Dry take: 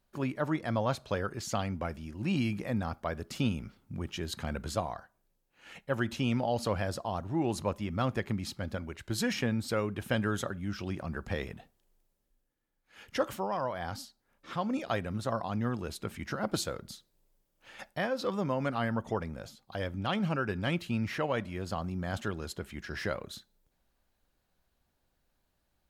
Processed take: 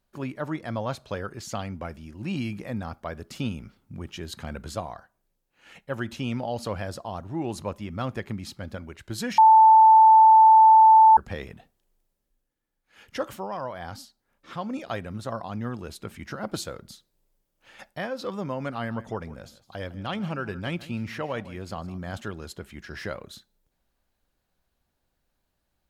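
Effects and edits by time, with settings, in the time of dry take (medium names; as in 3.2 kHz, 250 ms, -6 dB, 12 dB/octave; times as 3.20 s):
9.38–11.17 s: bleep 882 Hz -10 dBFS
18.74–22.11 s: delay 157 ms -17 dB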